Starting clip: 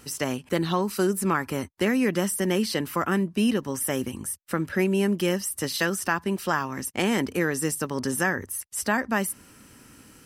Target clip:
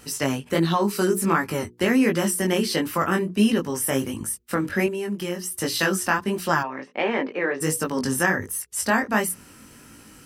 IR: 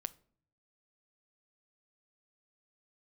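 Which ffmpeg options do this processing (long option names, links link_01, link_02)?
-filter_complex "[0:a]bandreject=frequency=60:width_type=h:width=6,bandreject=frequency=120:width_type=h:width=6,bandreject=frequency=180:width_type=h:width=6,bandreject=frequency=240:width_type=h:width=6,bandreject=frequency=300:width_type=h:width=6,bandreject=frequency=360:width_type=h:width=6,bandreject=frequency=420:width_type=h:width=6,bandreject=frequency=480:width_type=h:width=6,asettb=1/sr,asplit=3[link_01][link_02][link_03];[link_01]atrim=end=4.864[link_04];[link_02]atrim=start=4.86:end=5.58,asetpts=PTS-STARTPTS,afade=type=in:duration=0.004:curve=qsin,afade=type=out:start_time=0.716:duration=0.004:curve=qsin,acompressor=threshold=-30dB:ratio=4[link_05];[link_03]atrim=start=5.576[link_06];[link_04][link_05]acrossfade=duration=0.004:curve1=hsin:curve2=qsin[link_07];[link_07][link_06]acrossfade=duration=0.004:curve1=qsin:curve2=hsin,flanger=delay=17.5:depth=5.1:speed=1.4,asplit=3[link_08][link_09][link_10];[link_08]afade=type=out:start_time=6.62:duration=0.02[link_11];[link_09]highpass=380,equalizer=frequency=570:width_type=q:width=4:gain=5,equalizer=frequency=1400:width_type=q:width=4:gain=-4,equalizer=frequency=3100:width_type=q:width=4:gain=-5,lowpass=frequency=3200:width=0.5412,lowpass=frequency=3200:width=1.3066,afade=type=in:start_time=6.62:duration=0.02,afade=type=out:start_time=7.6:duration=0.02[link_12];[link_10]afade=type=in:start_time=7.6:duration=0.02[link_13];[link_11][link_12][link_13]amix=inputs=3:normalize=0,volume=6.5dB"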